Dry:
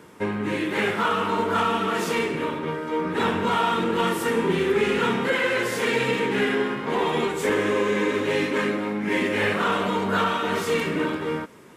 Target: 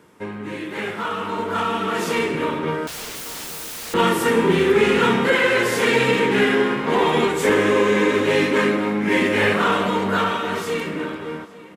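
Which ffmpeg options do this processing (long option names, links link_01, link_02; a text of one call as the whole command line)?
ffmpeg -i in.wav -filter_complex "[0:a]dynaudnorm=framelen=360:gausssize=11:maxgain=14dB,asettb=1/sr,asplit=3[link_01][link_02][link_03];[link_01]atrim=end=2.874[link_04];[link_02]atrim=start=2.87:end=3.94,asetpts=PTS-STARTPTS,afade=type=in:duration=0.004:curve=qsin,afade=type=out:start_time=1.066:duration=0.004:curve=qsin,aeval=exprs='(mod(15*val(0)+1,2)-1)/15':channel_layout=same[link_05];[link_03]atrim=start=3.936[link_06];[link_04][link_05]acrossfade=duration=0.004:curve1=hsin:curve2=qsin[link_07];[link_07][link_06]acrossfade=duration=0.004:curve1=qsin:curve2=hsin,asplit=2[link_08][link_09];[link_09]adelay=842,lowpass=frequency=4500:poles=1,volume=-19.5dB,asplit=2[link_10][link_11];[link_11]adelay=842,lowpass=frequency=4500:poles=1,volume=0.48,asplit=2[link_12][link_13];[link_13]adelay=842,lowpass=frequency=4500:poles=1,volume=0.48,asplit=2[link_14][link_15];[link_15]adelay=842,lowpass=frequency=4500:poles=1,volume=0.48[link_16];[link_10][link_12][link_14][link_16]amix=inputs=4:normalize=0[link_17];[link_08][link_17]amix=inputs=2:normalize=0,volume=-4.5dB" out.wav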